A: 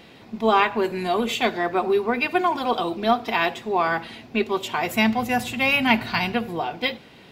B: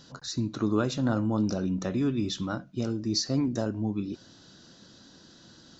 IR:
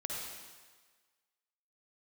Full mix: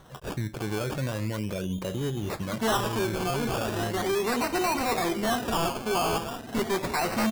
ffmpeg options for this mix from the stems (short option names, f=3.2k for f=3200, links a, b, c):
-filter_complex "[0:a]volume=24dB,asoftclip=hard,volume=-24dB,adelay=2200,volume=1.5dB,asplit=2[a][b];[b]volume=-13.5dB[c];[1:a]aecho=1:1:1.9:0.67,volume=1dB[d];[c]aecho=0:1:1004:1[e];[a][d][e]amix=inputs=3:normalize=0,acrusher=samples=18:mix=1:aa=0.000001:lfo=1:lforange=10.8:lforate=0.38,alimiter=limit=-22dB:level=0:latency=1:release=72"